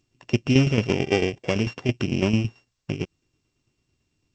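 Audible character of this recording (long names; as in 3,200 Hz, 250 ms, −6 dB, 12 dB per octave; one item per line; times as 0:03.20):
a buzz of ramps at a fixed pitch in blocks of 16 samples
tremolo saw down 9 Hz, depth 65%
G.722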